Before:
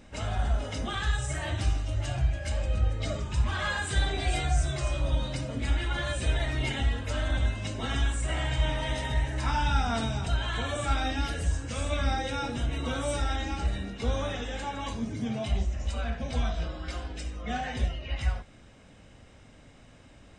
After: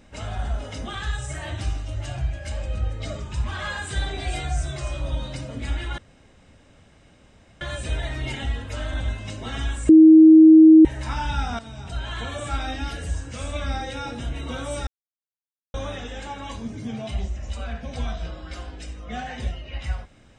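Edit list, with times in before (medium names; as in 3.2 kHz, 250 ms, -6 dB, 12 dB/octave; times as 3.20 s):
5.98 s: insert room tone 1.63 s
8.26–9.22 s: bleep 317 Hz -6 dBFS
9.96–10.50 s: fade in, from -15 dB
13.24–14.11 s: mute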